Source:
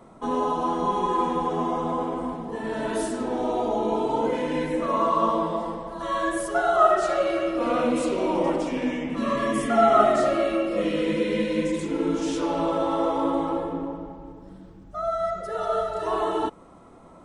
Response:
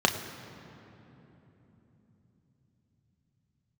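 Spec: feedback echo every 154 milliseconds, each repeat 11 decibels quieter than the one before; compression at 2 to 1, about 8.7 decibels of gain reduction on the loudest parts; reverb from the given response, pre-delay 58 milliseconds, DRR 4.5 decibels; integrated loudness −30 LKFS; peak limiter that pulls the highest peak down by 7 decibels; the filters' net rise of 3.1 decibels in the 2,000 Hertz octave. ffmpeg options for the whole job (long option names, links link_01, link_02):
-filter_complex "[0:a]equalizer=frequency=2000:width_type=o:gain=4,acompressor=threshold=-28dB:ratio=2,alimiter=limit=-21dB:level=0:latency=1,aecho=1:1:154|308|462:0.282|0.0789|0.0221,asplit=2[link_01][link_02];[1:a]atrim=start_sample=2205,adelay=58[link_03];[link_02][link_03]afir=irnorm=-1:irlink=0,volume=-19dB[link_04];[link_01][link_04]amix=inputs=2:normalize=0,volume=-1.5dB"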